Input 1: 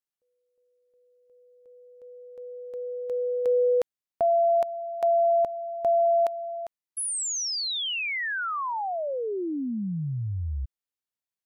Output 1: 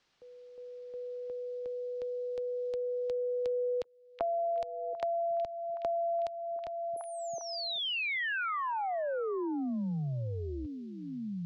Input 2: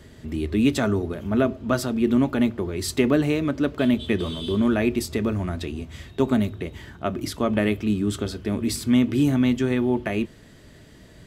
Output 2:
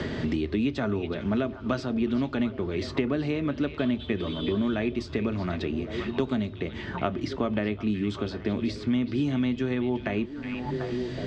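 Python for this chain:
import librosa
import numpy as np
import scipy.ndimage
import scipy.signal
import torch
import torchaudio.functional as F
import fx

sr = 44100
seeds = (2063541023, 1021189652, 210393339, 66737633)

y = scipy.signal.sosfilt(scipy.signal.butter(4, 5200.0, 'lowpass', fs=sr, output='sos'), x)
y = fx.echo_stepped(y, sr, ms=371, hz=2800.0, octaves=-1.4, feedback_pct=70, wet_db=-9.5)
y = fx.band_squash(y, sr, depth_pct=100)
y = F.gain(torch.from_numpy(y), -6.0).numpy()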